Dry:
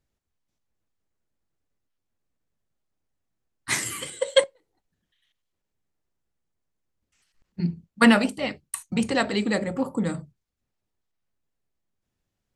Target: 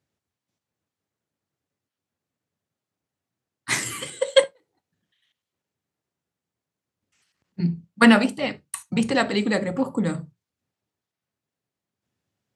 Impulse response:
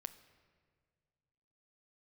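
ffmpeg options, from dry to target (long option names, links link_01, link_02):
-filter_complex "[0:a]highpass=frequency=89:width=0.5412,highpass=frequency=89:width=1.3066,highshelf=frequency=11000:gain=-7,asplit=2[link_01][link_02];[1:a]atrim=start_sample=2205,afade=type=out:start_time=0.13:duration=0.01,atrim=end_sample=6174[link_03];[link_02][link_03]afir=irnorm=-1:irlink=0,volume=6.5dB[link_04];[link_01][link_04]amix=inputs=2:normalize=0,volume=-5dB"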